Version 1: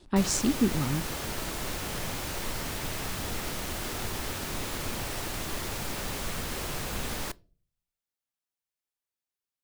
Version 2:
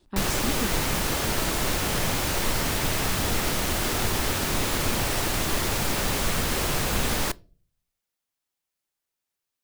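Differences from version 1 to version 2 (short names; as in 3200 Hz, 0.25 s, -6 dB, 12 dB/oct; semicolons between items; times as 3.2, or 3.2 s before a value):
speech -7.0 dB; background +8.5 dB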